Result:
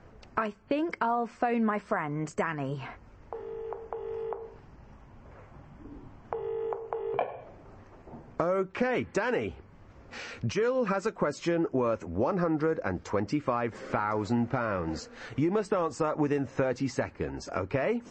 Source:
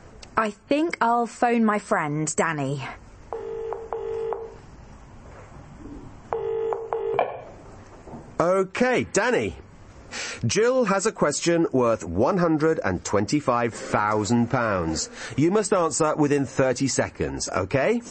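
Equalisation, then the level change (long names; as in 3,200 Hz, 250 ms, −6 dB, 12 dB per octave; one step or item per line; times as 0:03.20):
high-frequency loss of the air 160 metres
−6.5 dB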